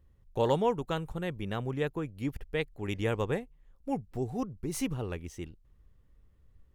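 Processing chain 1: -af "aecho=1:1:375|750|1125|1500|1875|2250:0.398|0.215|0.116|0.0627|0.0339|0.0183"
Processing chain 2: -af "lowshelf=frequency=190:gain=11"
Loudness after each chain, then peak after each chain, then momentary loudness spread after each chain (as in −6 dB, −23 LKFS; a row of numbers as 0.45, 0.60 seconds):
−33.0, −30.0 LKFS; −14.5, −12.5 dBFS; 15, 9 LU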